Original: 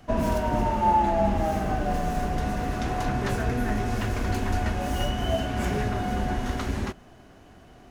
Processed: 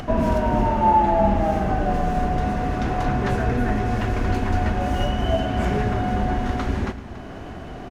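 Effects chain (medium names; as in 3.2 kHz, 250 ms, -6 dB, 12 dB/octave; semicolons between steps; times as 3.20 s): low-pass 2.6 kHz 6 dB/octave; upward compressor, threshold -28 dBFS; multi-tap echo 111/283 ms -15.5/-13 dB; trim +4.5 dB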